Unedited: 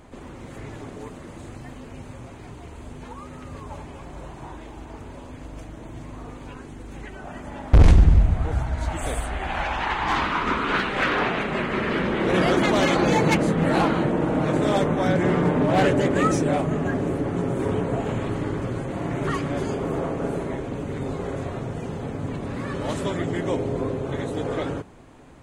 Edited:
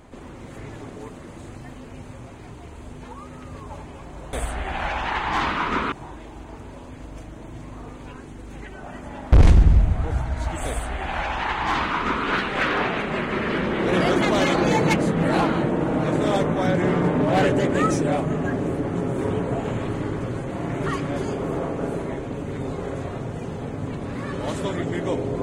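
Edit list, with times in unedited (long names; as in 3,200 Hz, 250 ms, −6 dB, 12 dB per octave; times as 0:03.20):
0:09.08–0:10.67: duplicate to 0:04.33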